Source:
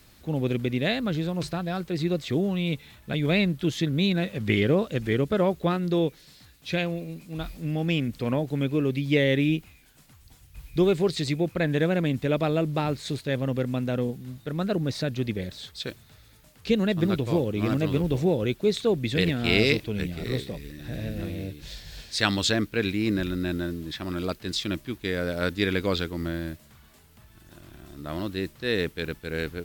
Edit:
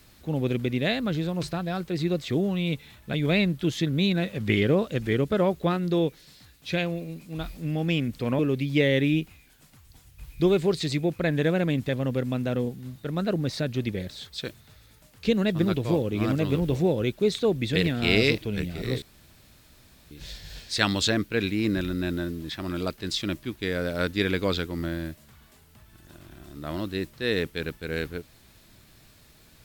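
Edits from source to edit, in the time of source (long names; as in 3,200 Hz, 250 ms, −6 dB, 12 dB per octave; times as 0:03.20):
0:08.39–0:08.75: remove
0:12.25–0:13.31: remove
0:20.44–0:21.53: fill with room tone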